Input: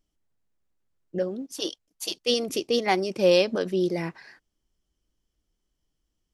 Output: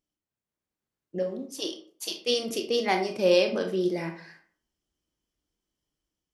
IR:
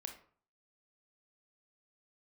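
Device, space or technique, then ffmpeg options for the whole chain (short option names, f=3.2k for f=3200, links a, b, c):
far laptop microphone: -filter_complex "[0:a]asettb=1/sr,asplit=3[a][b][c];[a]atrim=end=1.184[d];[b]atrim=start=1.18:end=1.64,asetpts=PTS-STARTPTS,afade=t=in:d=0.004:c=qsin,afade=t=out:st=0.456:d=0.004:c=qsin,bandreject=f=1.5k:w=5.2[e];[c]atrim=start=1.636[f];[d][e]acrossfade=d=0.004:c1=hsin:c2=qsin[g];[g][f]acrossfade=d=0.004:c1=qsin:c2=hsin[h];[1:a]atrim=start_sample=2205[i];[h][i]afir=irnorm=-1:irlink=0,highpass=f=110:p=1,dynaudnorm=f=210:g=5:m=5dB,volume=-3dB"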